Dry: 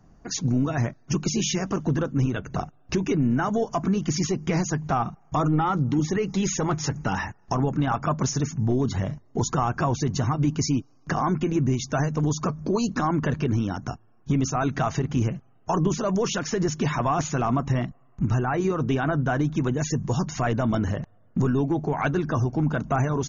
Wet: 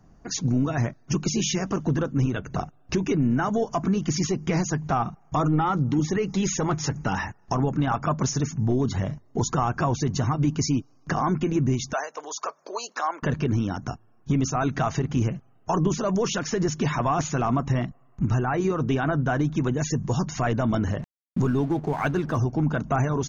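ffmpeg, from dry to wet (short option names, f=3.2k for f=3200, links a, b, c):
-filter_complex "[0:a]asettb=1/sr,asplit=3[a][b][c];[a]atrim=end=11.934[d];[b]atrim=start=11.93:end=13.23,asetpts=PTS-STARTPTS,afade=t=in:d=0.004:c=qsin,afade=t=out:st=1.296:d=0.004:c=qsin,highpass=f=540:w=0.5412,highpass=f=540:w=1.3066[e];[c]atrim=start=13.226[f];[d][e]acrossfade=d=0.004:c1=hsin:c2=qsin[g];[g][f]acrossfade=d=0.004:c1=qsin:c2=hsin,asettb=1/sr,asplit=3[h][i][j];[h]atrim=end=20.994[k];[i]atrim=start=20.99:end=22.38,asetpts=PTS-STARTPTS,afade=t=in:d=0.004:c=qsin,afade=t=out:st=1.386:d=0.004:c=qsin,aeval=exprs='sgn(val(0))*max(abs(val(0))-0.00562,0)':c=same[l];[j]atrim=start=22.376[m];[k][l]acrossfade=d=0.004:c1=hsin:c2=qsin[n];[n][m]acrossfade=d=0.004:c1=qsin:c2=hsin"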